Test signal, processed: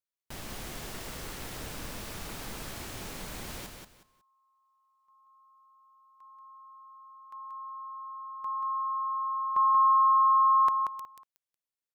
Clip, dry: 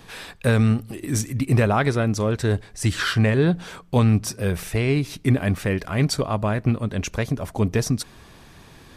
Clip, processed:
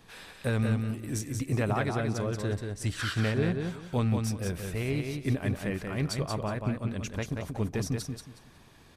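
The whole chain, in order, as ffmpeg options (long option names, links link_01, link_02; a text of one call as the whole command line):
ffmpeg -i in.wav -filter_complex "[0:a]tremolo=f=220:d=0.333,asplit=2[link_01][link_02];[link_02]aecho=0:1:183|366|549:0.562|0.135|0.0324[link_03];[link_01][link_03]amix=inputs=2:normalize=0,volume=-8.5dB" out.wav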